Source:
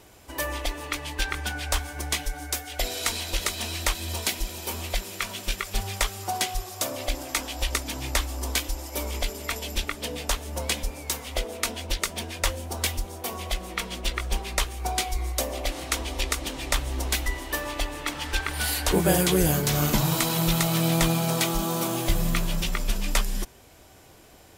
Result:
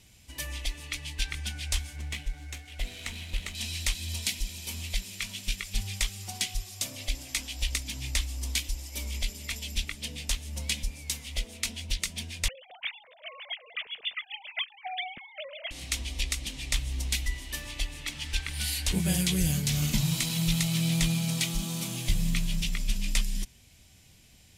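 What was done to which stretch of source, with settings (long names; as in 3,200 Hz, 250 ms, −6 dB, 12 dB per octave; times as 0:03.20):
0:01.96–0:03.55: running median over 9 samples
0:12.48–0:15.71: three sine waves on the formant tracks
whole clip: low-pass filter 11,000 Hz 12 dB per octave; flat-topped bell 690 Hz −15 dB 2.7 octaves; level −2 dB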